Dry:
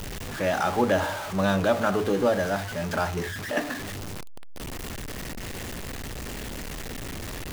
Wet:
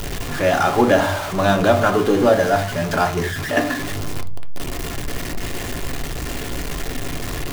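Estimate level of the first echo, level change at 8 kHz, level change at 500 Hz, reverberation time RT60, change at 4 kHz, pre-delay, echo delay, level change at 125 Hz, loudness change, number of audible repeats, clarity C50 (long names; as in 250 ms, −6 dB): no echo audible, +7.0 dB, +8.0 dB, 0.50 s, +7.5 dB, 3 ms, no echo audible, +7.5 dB, +8.0 dB, no echo audible, 16.5 dB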